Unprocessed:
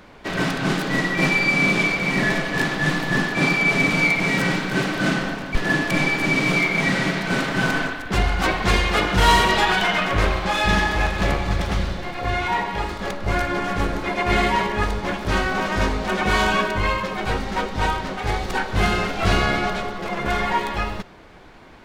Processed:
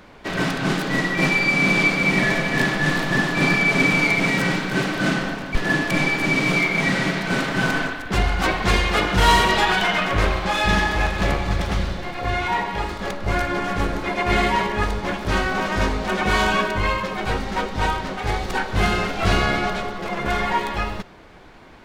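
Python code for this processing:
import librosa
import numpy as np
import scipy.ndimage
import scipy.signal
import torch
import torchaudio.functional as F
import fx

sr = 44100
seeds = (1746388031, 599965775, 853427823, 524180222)

y = fx.echo_single(x, sr, ms=378, db=-5.5, at=(1.65, 4.29), fade=0.02)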